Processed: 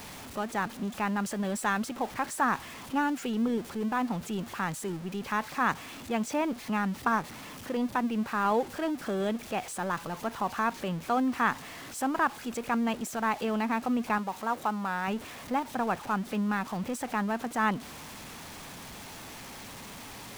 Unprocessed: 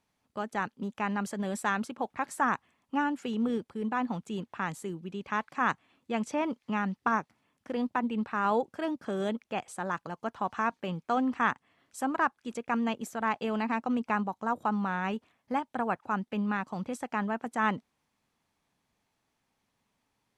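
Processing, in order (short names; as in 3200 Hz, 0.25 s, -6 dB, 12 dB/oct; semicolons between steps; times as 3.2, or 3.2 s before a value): zero-crossing step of -38 dBFS; 14.18–15.08 low shelf 210 Hz -10.5 dB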